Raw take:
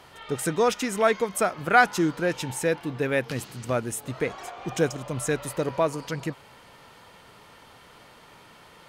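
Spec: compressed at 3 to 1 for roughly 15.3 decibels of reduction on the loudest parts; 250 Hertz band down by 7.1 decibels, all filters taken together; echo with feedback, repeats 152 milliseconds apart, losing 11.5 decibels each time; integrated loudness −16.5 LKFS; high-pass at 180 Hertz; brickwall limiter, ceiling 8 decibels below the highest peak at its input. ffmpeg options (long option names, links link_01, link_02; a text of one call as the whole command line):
ffmpeg -i in.wav -af "highpass=180,equalizer=frequency=250:width_type=o:gain=-9,acompressor=threshold=-34dB:ratio=3,alimiter=level_in=3.5dB:limit=-24dB:level=0:latency=1,volume=-3.5dB,aecho=1:1:152|304|456:0.266|0.0718|0.0194,volume=22.5dB" out.wav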